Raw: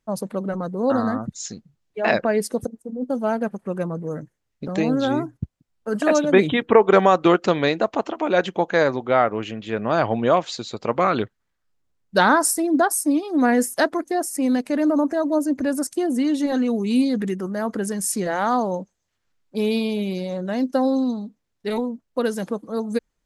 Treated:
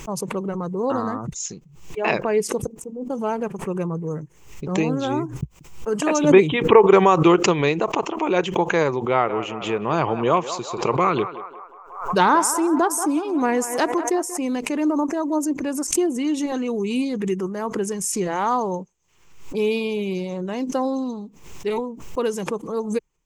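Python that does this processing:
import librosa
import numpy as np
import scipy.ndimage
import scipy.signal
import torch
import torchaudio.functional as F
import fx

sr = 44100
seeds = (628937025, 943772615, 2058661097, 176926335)

y = fx.echo_banded(x, sr, ms=183, feedback_pct=61, hz=950.0, wet_db=-11, at=(9.25, 14.36), fade=0.02)
y = fx.ripple_eq(y, sr, per_octave=0.73, db=9)
y = fx.pre_swell(y, sr, db_per_s=88.0)
y = y * librosa.db_to_amplitude(-1.0)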